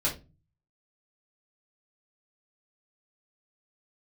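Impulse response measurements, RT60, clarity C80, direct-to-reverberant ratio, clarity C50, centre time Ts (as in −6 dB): 0.25 s, 18.5 dB, −7.0 dB, 10.5 dB, 20 ms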